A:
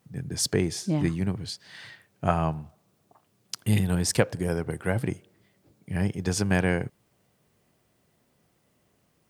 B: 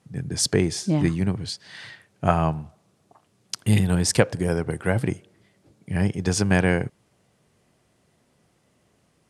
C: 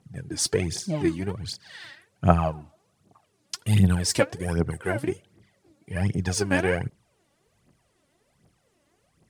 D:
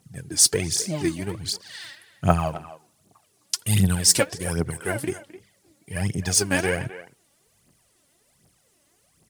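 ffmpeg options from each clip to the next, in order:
ffmpeg -i in.wav -af "lowpass=frequency=11000:width=0.5412,lowpass=frequency=11000:width=1.3066,volume=4dB" out.wav
ffmpeg -i in.wav -af "aphaser=in_gain=1:out_gain=1:delay=3.7:decay=0.7:speed=1.3:type=triangular,volume=-5dB" out.wav
ffmpeg -i in.wav -filter_complex "[0:a]crystalizer=i=3:c=0,asplit=2[link_01][link_02];[link_02]adelay=260,highpass=300,lowpass=3400,asoftclip=type=hard:threshold=-10dB,volume=-14dB[link_03];[link_01][link_03]amix=inputs=2:normalize=0,volume=-1dB" out.wav

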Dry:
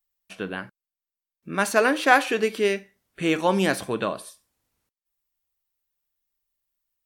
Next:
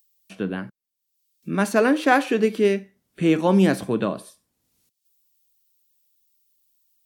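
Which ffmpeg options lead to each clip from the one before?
ffmpeg -i in.wav -filter_complex "[0:a]equalizer=frequency=200:width_type=o:width=2.5:gain=11.5,acrossover=split=120|1400|3000[link_01][link_02][link_03][link_04];[link_04]acompressor=mode=upward:threshold=-47dB:ratio=2.5[link_05];[link_01][link_02][link_03][link_05]amix=inputs=4:normalize=0,volume=-3.5dB" out.wav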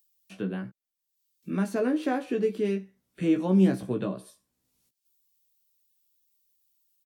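ffmpeg -i in.wav -filter_complex "[0:a]asplit=2[link_01][link_02];[link_02]adelay=16,volume=-4dB[link_03];[link_01][link_03]amix=inputs=2:normalize=0,acrossover=split=490[link_04][link_05];[link_05]acompressor=threshold=-37dB:ratio=2[link_06];[link_04][link_06]amix=inputs=2:normalize=0,volume=-6dB" out.wav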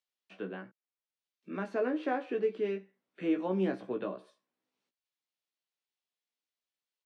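ffmpeg -i in.wav -af "highpass=360,lowpass=2800,volume=-2dB" out.wav

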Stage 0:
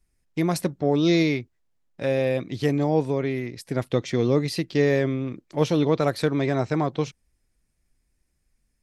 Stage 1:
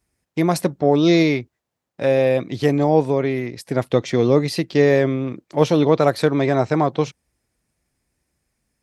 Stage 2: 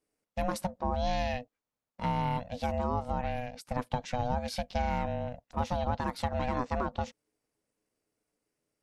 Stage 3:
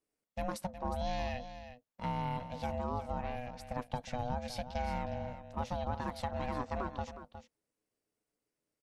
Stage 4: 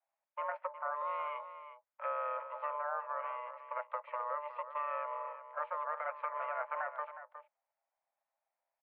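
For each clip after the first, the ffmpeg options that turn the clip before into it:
ffmpeg -i in.wav -af "highpass=74,equalizer=frequency=740:width_type=o:width=1.7:gain=4.5,volume=3.5dB" out.wav
ffmpeg -i in.wav -af "acompressor=threshold=-15dB:ratio=6,aeval=exprs='val(0)*sin(2*PI*370*n/s)':channel_layout=same,volume=-8dB" out.wav
ffmpeg -i in.wav -af "aecho=1:1:363:0.266,volume=-5.5dB" out.wav
ffmpeg -i in.wav -af "highpass=frequency=160:width_type=q:width=0.5412,highpass=frequency=160:width_type=q:width=1.307,lowpass=frequency=2000:width_type=q:width=0.5176,lowpass=frequency=2000:width_type=q:width=0.7071,lowpass=frequency=2000:width_type=q:width=1.932,afreqshift=370" out.wav

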